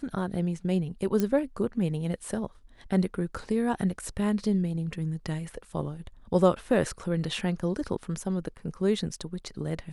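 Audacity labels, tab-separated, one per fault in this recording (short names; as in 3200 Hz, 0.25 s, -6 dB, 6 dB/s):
1.200000	1.200000	pop -14 dBFS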